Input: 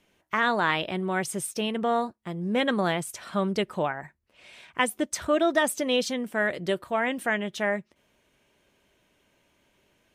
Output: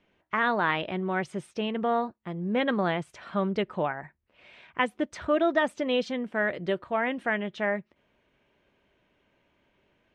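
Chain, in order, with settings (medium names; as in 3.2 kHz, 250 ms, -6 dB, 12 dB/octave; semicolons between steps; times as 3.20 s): low-pass 2.9 kHz 12 dB/octave; trim -1 dB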